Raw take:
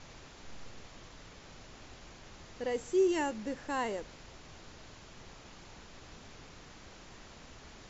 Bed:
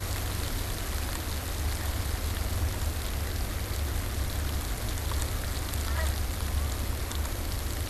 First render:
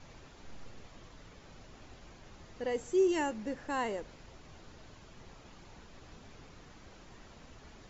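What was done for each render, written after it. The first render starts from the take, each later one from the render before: denoiser 6 dB, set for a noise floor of -54 dBFS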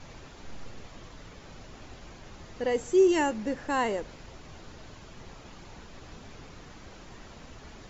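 gain +6.5 dB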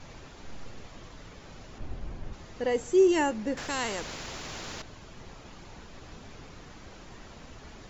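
1.78–2.33 tilt -2.5 dB/oct; 3.57–4.82 spectral compressor 2:1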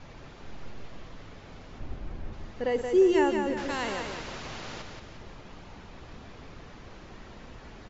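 air absorption 110 m; feedback echo 0.176 s, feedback 45%, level -5.5 dB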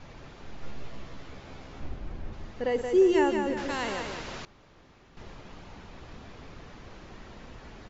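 0.61–1.89 doubler 15 ms -2.5 dB; 4.45–5.17 room tone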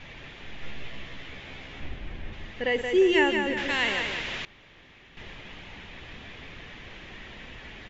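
band shelf 2500 Hz +11.5 dB 1.3 oct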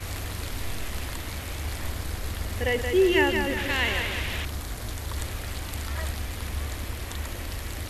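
add bed -2 dB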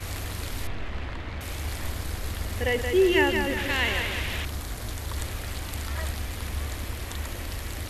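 0.67–1.41 LPF 2700 Hz

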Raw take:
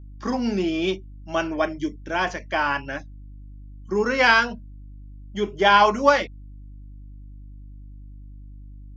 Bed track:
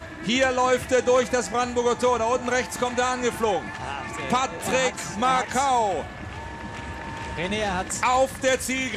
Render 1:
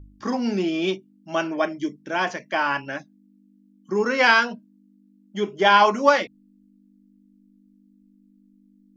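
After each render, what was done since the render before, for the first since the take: de-hum 50 Hz, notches 3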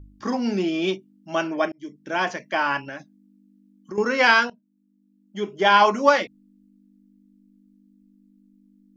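1.72–2.12 fade in; 2.84–3.98 compressor, threshold -30 dBFS; 4.5–5.82 fade in, from -19.5 dB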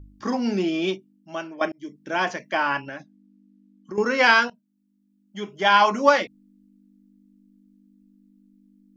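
0.75–1.61 fade out, to -13 dB; 2.57–3.97 air absorption 57 m; 4.48–5.91 bell 360 Hz -7 dB 1.2 oct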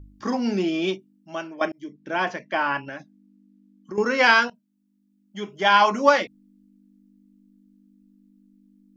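1.84–2.87 air absorption 110 m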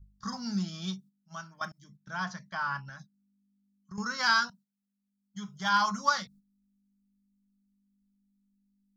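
gate -43 dBFS, range -11 dB; EQ curve 190 Hz 0 dB, 310 Hz -30 dB, 560 Hz -23 dB, 1300 Hz -3 dB, 2600 Hz -23 dB, 3900 Hz 0 dB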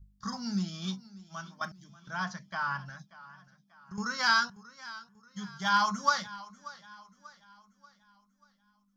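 warbling echo 0.587 s, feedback 44%, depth 64 cents, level -18.5 dB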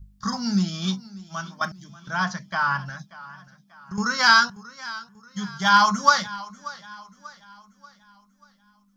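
gain +9.5 dB

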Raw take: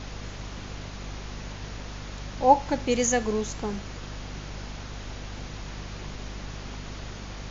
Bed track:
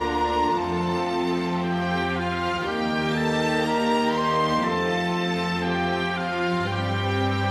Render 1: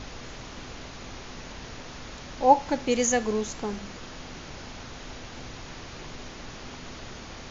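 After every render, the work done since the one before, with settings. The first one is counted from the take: de-hum 50 Hz, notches 4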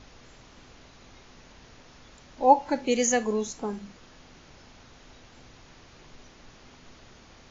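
noise print and reduce 11 dB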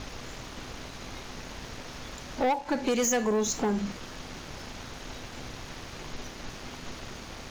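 compressor 5:1, threshold -30 dBFS, peak gain reduction 16.5 dB; sample leveller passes 3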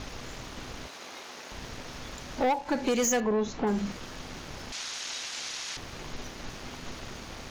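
0.87–1.52 HPF 390 Hz; 3.2–3.67 air absorption 230 m; 4.72–5.77 weighting filter ITU-R 468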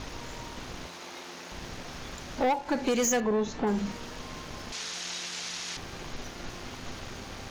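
add bed track -26.5 dB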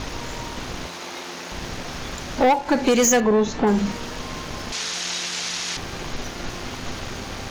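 gain +9 dB

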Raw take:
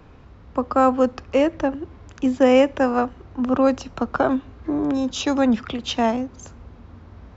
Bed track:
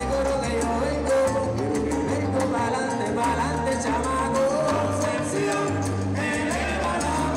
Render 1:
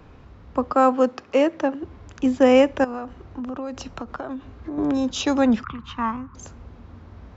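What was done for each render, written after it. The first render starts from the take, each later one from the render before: 0.72–1.83 HPF 210 Hz; 2.84–4.78 compressor 10:1, threshold -27 dBFS; 5.64–6.35 EQ curve 150 Hz 0 dB, 660 Hz -21 dB, 1100 Hz +10 dB, 1800 Hz -4 dB, 5000 Hz -20 dB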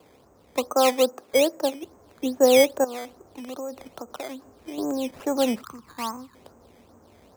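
band-pass 570 Hz, Q 1.2; decimation with a swept rate 11×, swing 100% 2.4 Hz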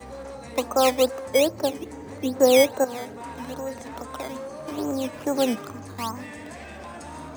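add bed track -14.5 dB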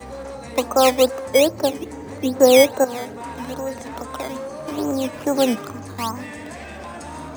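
gain +4.5 dB

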